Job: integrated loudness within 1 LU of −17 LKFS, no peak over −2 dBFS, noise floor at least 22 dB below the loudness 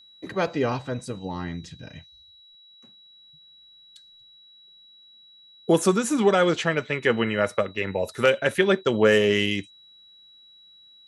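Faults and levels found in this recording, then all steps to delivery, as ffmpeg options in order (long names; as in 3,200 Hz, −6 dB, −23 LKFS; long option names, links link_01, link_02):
interfering tone 3,900 Hz; level of the tone −50 dBFS; integrated loudness −23.5 LKFS; sample peak −6.0 dBFS; target loudness −17.0 LKFS
→ -af "bandreject=frequency=3900:width=30"
-af "volume=6.5dB,alimiter=limit=-2dB:level=0:latency=1"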